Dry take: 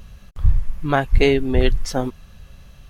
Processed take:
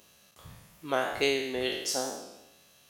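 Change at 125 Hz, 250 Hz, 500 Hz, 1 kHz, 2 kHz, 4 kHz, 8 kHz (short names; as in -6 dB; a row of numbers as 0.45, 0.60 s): -26.5 dB, -14.5 dB, -10.0 dB, -8.5 dB, -7.0 dB, -2.0 dB, n/a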